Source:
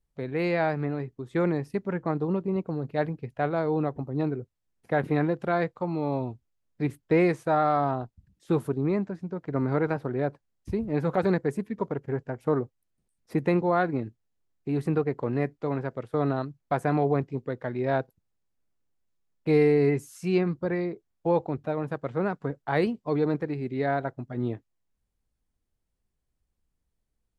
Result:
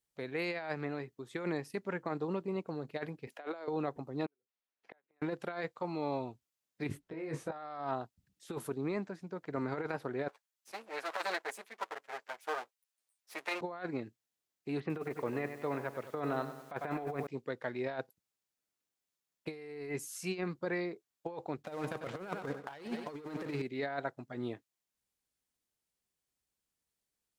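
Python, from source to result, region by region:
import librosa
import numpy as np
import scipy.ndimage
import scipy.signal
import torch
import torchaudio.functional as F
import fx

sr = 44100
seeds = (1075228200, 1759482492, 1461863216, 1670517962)

y = fx.chain(x, sr, fx.highpass(hz=260.0, slope=24),
    fx.over_compress(threshold_db=-34.0, ratio=-0.5), at=(3.27, 3.68))
y = fx.chain(y, sr, fx.bessel_highpass(hz=470.0, order=2),
    fx.gate_flip(shuts_db=-32.0, range_db=-42),
    fx.air_absorb(metres=220.0), at=(4.26, 5.22))
y = fx.chain(y, sr, fx.tilt_eq(slope=-3.0),
    fx.over_compress(threshold_db=-26.0, ratio=-1.0),
    fx.detune_double(cents=28), at=(6.89, 7.52))
y = fx.chain(y, sr, fx.lower_of_two(delay_ms=9.0),
    fx.highpass(hz=750.0, slope=12), at=(10.28, 13.61))
y = fx.chain(y, sr, fx.lowpass(hz=3400.0, slope=24),
    fx.echo_crushed(ms=97, feedback_pct=55, bits=9, wet_db=-11.5), at=(14.8, 17.27))
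y = fx.chain(y, sr, fx.leveller(passes=2),
    fx.echo_feedback(ms=95, feedback_pct=50, wet_db=-15.5), at=(21.62, 23.62))
y = fx.highpass(y, sr, hz=340.0, slope=6)
y = fx.high_shelf(y, sr, hz=2000.0, db=9.0)
y = fx.over_compress(y, sr, threshold_db=-28.0, ratio=-0.5)
y = y * 10.0 ** (-7.5 / 20.0)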